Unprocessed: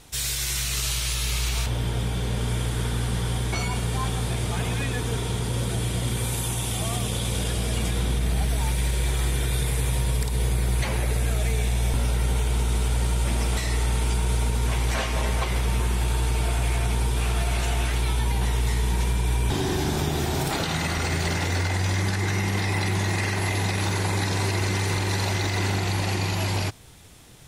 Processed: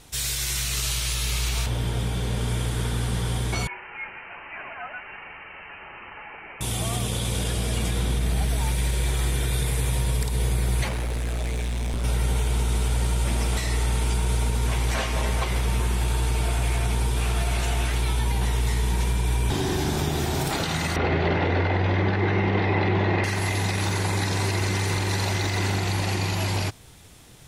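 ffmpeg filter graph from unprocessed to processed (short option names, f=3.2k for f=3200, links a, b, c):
-filter_complex "[0:a]asettb=1/sr,asplit=3[a][b][c];[a]atrim=end=3.674[d];[b]atrim=start=3.67:end=6.61,asetpts=PTS-STARTPTS,afade=t=in:d=0.004:c=qsin,afade=t=out:st=2.936:d=0.004:c=qsin,highpass=990,lowpass=f=2.7k:t=q:w=0.5098,lowpass=f=2.7k:t=q:w=0.6013,lowpass=f=2.7k:t=q:w=0.9,lowpass=f=2.7k:t=q:w=2.563,afreqshift=-3200[e];[c]atrim=start=6.606[f];[d][e]acrossfade=d=0.004:c1=hsin:c2=qsin[g];[g][f]acrossfade=d=0.004:c1=qsin:c2=hsin,asettb=1/sr,asplit=3[h][i][j];[h]atrim=end=10.884[k];[i]atrim=start=10.88:end=12.04,asetpts=PTS-STARTPTS,afade=t=in:d=0.004:c=qsin,afade=t=out:st=1.156:d=0.004:c=qsin,highshelf=f=11k:g=8.5,adynamicsmooth=sensitivity=3.5:basefreq=6.7k,asoftclip=type=hard:threshold=-24dB[l];[j]atrim=start=12.036[m];[k][l]acrossfade=d=0.004:c1=hsin:c2=qsin[n];[n][m]acrossfade=d=0.004:c1=qsin:c2=hsin,asettb=1/sr,asplit=3[o][p][q];[o]atrim=end=20.964[r];[p]atrim=start=20.96:end=23.24,asetpts=PTS-STARTPTS,afade=t=in:d=0.004:c=qsin,afade=t=out:st=2.276:d=0.004:c=qsin,lowpass=f=3.4k:w=0.5412,lowpass=f=3.4k:w=1.3066,equalizer=f=470:w=0.7:g=8.5[s];[q]atrim=start=23.236[t];[r][s]acrossfade=d=0.004:c1=hsin:c2=qsin[u];[u][t]acrossfade=d=0.004:c1=qsin:c2=hsin"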